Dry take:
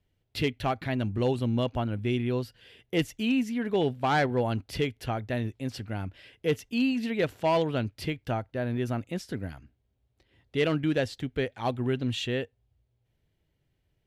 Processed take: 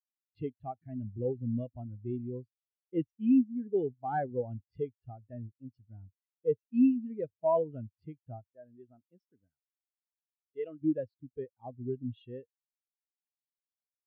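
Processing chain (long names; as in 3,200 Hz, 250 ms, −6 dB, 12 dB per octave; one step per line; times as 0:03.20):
0:08.47–0:10.82: low-shelf EQ 300 Hz −10.5 dB
every bin expanded away from the loudest bin 2.5 to 1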